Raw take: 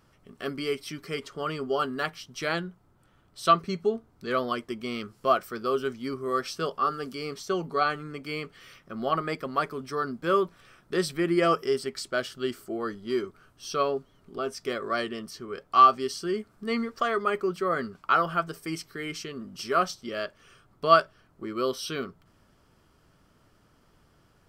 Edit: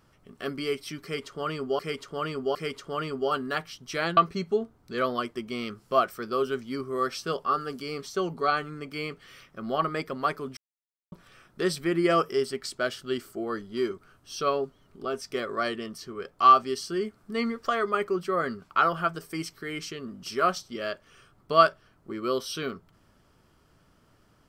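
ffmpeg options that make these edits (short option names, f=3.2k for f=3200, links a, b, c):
-filter_complex "[0:a]asplit=6[a][b][c][d][e][f];[a]atrim=end=1.792[g];[b]atrim=start=1.028:end=1.792[h];[c]atrim=start=1.028:end=2.652[i];[d]atrim=start=3.498:end=9.9,asetpts=PTS-STARTPTS,afade=t=out:st=6.398:d=0.004:c=hsin[j];[e]atrim=start=9.9:end=10.45,asetpts=PTS-STARTPTS,volume=0[k];[f]atrim=start=10.45,asetpts=PTS-STARTPTS,afade=t=in:d=0.004:c=hsin[l];[g][h]acrossfade=d=0.004:c1=hsin:c2=hsin[m];[m][i]acrossfade=d=0.004:c1=hsin:c2=hsin[n];[j][k][l]concat=n=3:v=0:a=1[o];[n][o]acrossfade=d=0.004:c1=hsin:c2=hsin"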